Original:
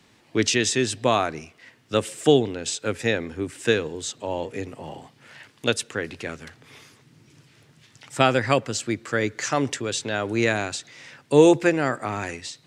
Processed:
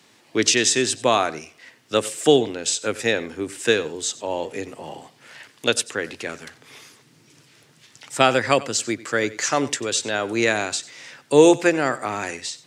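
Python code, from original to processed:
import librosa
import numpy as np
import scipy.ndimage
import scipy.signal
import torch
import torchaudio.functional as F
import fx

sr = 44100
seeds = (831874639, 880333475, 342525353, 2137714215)

y = scipy.signal.sosfilt(scipy.signal.butter(2, 100.0, 'highpass', fs=sr, output='sos'), x)
y = fx.bass_treble(y, sr, bass_db=-6, treble_db=4)
y = y + 10.0 ** (-18.5 / 20.0) * np.pad(y, (int(93 * sr / 1000.0), 0))[:len(y)]
y = y * librosa.db_to_amplitude(2.5)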